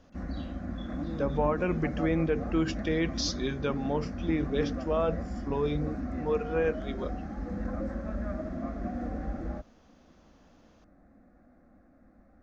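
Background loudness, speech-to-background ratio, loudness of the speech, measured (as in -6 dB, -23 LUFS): -36.5 LUFS, 5.0 dB, -31.5 LUFS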